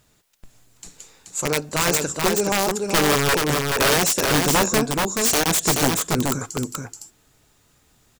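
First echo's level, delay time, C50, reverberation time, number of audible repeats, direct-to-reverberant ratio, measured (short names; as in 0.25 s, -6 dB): -3.5 dB, 0.429 s, none, none, 1, none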